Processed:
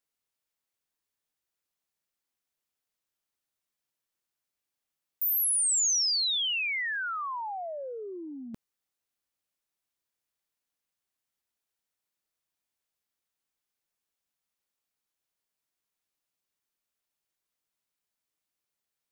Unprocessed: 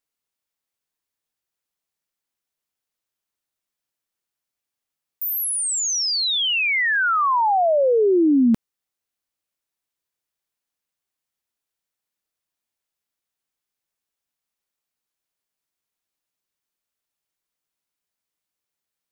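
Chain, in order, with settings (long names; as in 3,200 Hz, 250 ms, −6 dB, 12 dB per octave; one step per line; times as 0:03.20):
compressor whose output falls as the input rises −23 dBFS, ratio −0.5
level −6.5 dB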